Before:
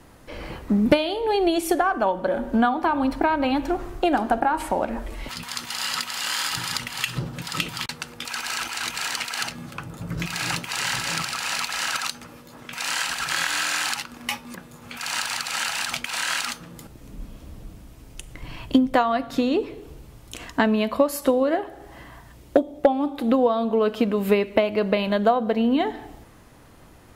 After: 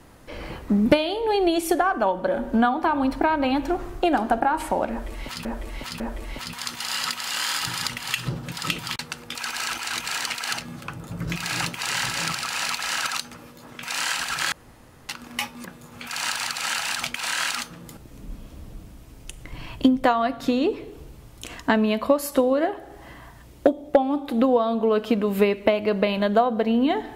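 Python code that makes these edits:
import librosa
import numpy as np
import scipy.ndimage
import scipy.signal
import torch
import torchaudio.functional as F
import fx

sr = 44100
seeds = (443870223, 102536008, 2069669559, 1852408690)

y = fx.edit(x, sr, fx.repeat(start_s=4.9, length_s=0.55, count=3),
    fx.room_tone_fill(start_s=13.42, length_s=0.57), tone=tone)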